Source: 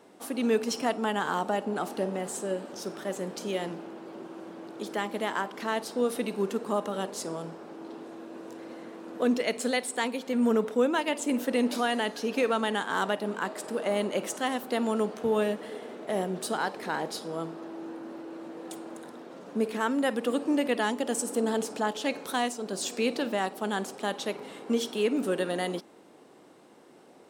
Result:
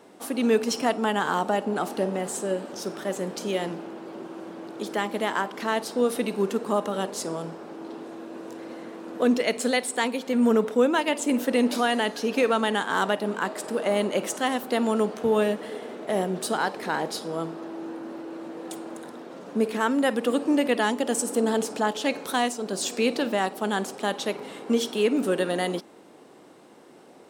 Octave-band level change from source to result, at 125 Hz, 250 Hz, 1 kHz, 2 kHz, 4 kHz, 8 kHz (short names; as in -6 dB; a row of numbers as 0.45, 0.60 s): +4.0, +4.0, +4.0, +4.0, +4.0, +4.0 dB